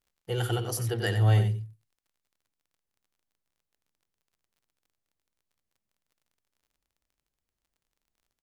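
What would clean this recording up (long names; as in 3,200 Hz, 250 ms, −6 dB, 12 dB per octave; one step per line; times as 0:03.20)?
click removal
echo removal 90 ms −9 dB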